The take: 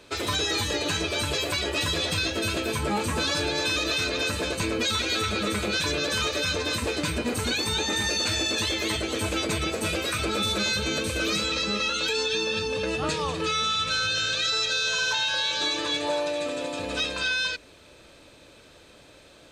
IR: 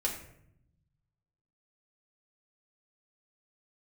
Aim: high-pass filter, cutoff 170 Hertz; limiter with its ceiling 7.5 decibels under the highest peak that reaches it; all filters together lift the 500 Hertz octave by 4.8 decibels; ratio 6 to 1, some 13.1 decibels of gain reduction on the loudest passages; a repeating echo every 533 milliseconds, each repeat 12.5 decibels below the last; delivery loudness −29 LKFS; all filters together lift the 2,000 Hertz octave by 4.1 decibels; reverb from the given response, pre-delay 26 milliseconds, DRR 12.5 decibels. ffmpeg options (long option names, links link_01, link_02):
-filter_complex "[0:a]highpass=170,equalizer=frequency=500:width_type=o:gain=5.5,equalizer=frequency=2000:width_type=o:gain=5.5,acompressor=threshold=-35dB:ratio=6,alimiter=level_in=5.5dB:limit=-24dB:level=0:latency=1,volume=-5.5dB,aecho=1:1:533|1066|1599:0.237|0.0569|0.0137,asplit=2[link_01][link_02];[1:a]atrim=start_sample=2205,adelay=26[link_03];[link_02][link_03]afir=irnorm=-1:irlink=0,volume=-17.5dB[link_04];[link_01][link_04]amix=inputs=2:normalize=0,volume=7.5dB"